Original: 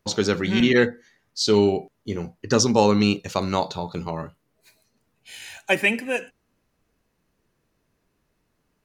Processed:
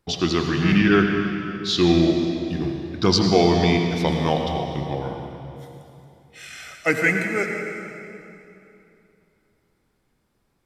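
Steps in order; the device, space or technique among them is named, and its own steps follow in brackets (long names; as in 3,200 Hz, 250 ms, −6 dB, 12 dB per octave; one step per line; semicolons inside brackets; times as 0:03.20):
slowed and reverbed (speed change −17%; convolution reverb RT60 2.9 s, pre-delay 77 ms, DRR 3.5 dB)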